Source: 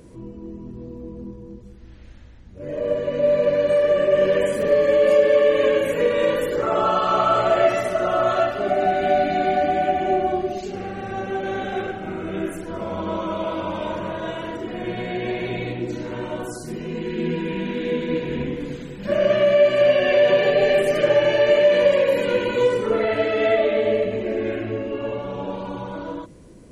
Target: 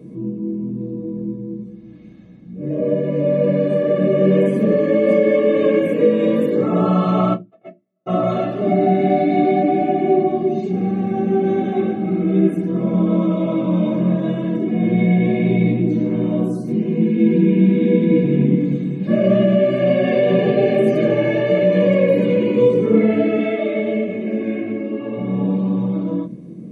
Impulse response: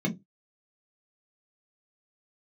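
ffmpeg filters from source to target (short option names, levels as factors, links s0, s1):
-filter_complex "[0:a]asplit=3[s0][s1][s2];[s0]afade=t=out:st=7.33:d=0.02[s3];[s1]agate=range=0.00141:threshold=0.282:ratio=16:detection=peak,afade=t=in:st=7.33:d=0.02,afade=t=out:st=8.06:d=0.02[s4];[s2]afade=t=in:st=8.06:d=0.02[s5];[s3][s4][s5]amix=inputs=3:normalize=0,asettb=1/sr,asplit=3[s6][s7][s8];[s6]atrim=end=23.394[s9];[s7]atrim=start=23.39:end=25.17,asetpts=PTS-STARTPTS,afade=t=in:d=0.004:c=qsin,afade=t=out:st=1.776:d=0.004:c=qsin,lowshelf=f=330:g=-10.5[s10];[s8]atrim=start=25.166[s11];[s9][s10]acrossfade=d=0.004:c1=hsin:c2=qsin[s12];[s12][s11]acrossfade=d=0.004:c1=qsin:c2=hsin[s13];[1:a]atrim=start_sample=2205[s14];[s13][s14]afir=irnorm=-1:irlink=0,volume=0.376"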